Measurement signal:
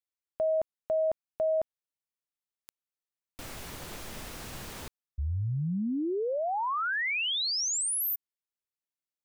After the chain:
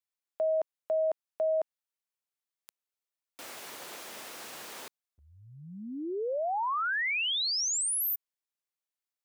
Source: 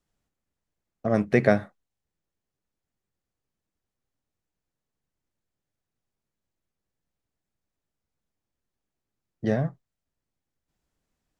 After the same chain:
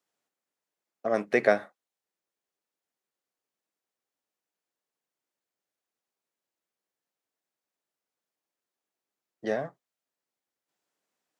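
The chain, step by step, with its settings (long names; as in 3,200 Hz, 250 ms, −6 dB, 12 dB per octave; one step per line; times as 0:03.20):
high-pass filter 400 Hz 12 dB per octave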